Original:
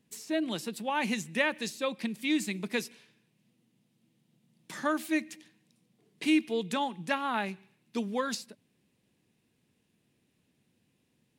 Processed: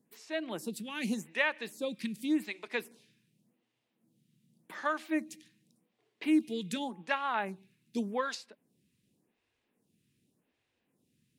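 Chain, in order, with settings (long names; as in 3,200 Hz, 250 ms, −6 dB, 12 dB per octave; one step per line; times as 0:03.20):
phaser with staggered stages 0.87 Hz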